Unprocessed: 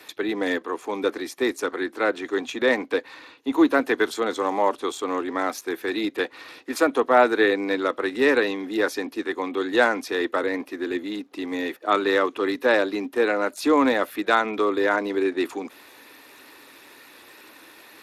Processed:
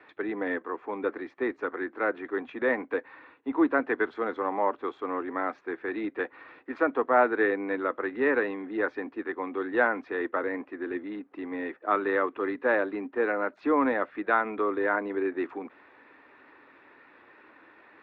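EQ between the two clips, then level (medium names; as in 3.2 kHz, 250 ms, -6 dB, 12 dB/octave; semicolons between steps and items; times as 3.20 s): four-pole ladder low-pass 2.3 kHz, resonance 25%; 0.0 dB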